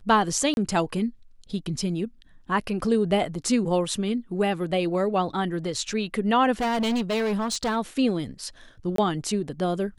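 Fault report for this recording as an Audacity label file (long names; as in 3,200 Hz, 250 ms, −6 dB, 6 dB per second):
0.540000	0.570000	drop-out 31 ms
6.600000	7.770000	clipping −22 dBFS
8.960000	8.980000	drop-out 23 ms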